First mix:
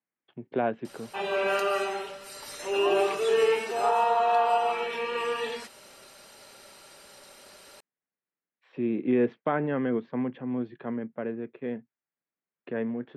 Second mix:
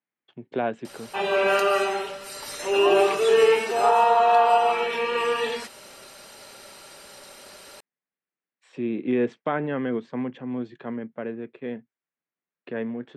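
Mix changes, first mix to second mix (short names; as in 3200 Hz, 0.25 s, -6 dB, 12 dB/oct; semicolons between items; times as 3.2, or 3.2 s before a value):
speech: remove air absorption 280 m; background +5.5 dB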